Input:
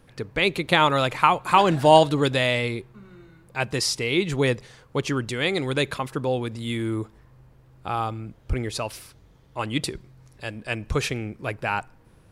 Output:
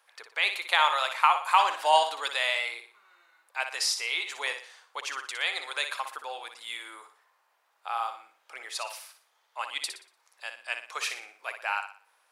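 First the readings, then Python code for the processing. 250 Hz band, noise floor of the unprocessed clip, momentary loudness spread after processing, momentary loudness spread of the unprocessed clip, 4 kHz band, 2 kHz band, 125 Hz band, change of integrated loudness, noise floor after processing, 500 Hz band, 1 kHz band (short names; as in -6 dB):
-34.0 dB, -55 dBFS, 19 LU, 16 LU, -2.5 dB, -2.5 dB, under -40 dB, -5.0 dB, -71 dBFS, -13.5 dB, -3.5 dB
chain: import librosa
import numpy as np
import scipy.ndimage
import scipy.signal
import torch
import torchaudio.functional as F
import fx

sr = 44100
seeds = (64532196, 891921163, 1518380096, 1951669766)

y = scipy.signal.sosfilt(scipy.signal.butter(4, 770.0, 'highpass', fs=sr, output='sos'), x)
y = fx.room_flutter(y, sr, wall_m=10.2, rt60_s=0.43)
y = F.gain(torch.from_numpy(y), -3.0).numpy()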